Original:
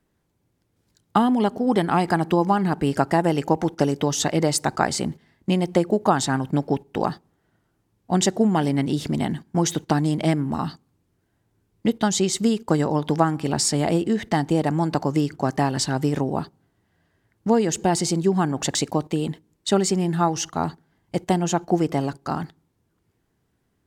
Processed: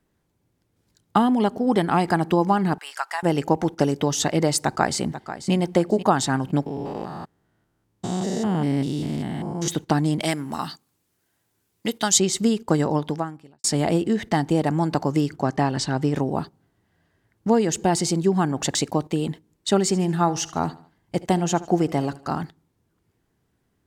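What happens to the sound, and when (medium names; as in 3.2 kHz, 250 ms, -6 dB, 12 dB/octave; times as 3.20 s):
2.78–3.23 s: high-pass 1 kHz 24 dB/octave
4.64–5.53 s: echo throw 490 ms, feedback 20%, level -12 dB
6.66–9.68 s: spectrogram pixelated in time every 200 ms
10.20–12.18 s: tilt EQ +3 dB/octave
12.96–13.64 s: fade out quadratic
15.42–16.16 s: distance through air 54 m
19.78–22.34 s: feedback delay 76 ms, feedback 42%, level -19 dB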